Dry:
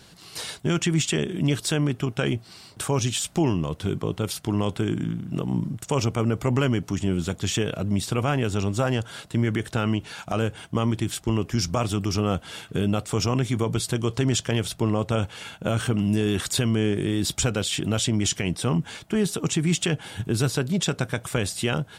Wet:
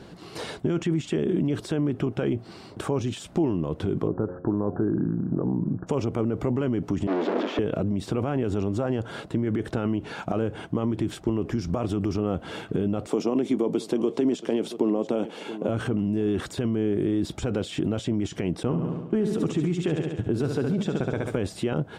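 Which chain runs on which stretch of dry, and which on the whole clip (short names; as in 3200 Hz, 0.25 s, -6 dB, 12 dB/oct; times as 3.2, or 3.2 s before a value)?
4.07–5.87 Chebyshev low-pass 1700 Hz, order 8 + de-hum 89.7 Hz, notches 8
7.07–7.59 infinite clipping + steep high-pass 230 Hz 48 dB/oct + air absorption 230 m
13.07–15.69 HPF 210 Hz 24 dB/oct + bell 1500 Hz -6.5 dB 1.1 oct + echo 0.677 s -20 dB
18.63–21.39 gate -35 dBFS, range -25 dB + feedback echo 69 ms, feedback 58%, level -9 dB
whole clip: limiter -21.5 dBFS; compressor, threshold -30 dBFS; EQ curve 130 Hz 0 dB, 330 Hz +8 dB, 12000 Hz -17 dB; gain +5 dB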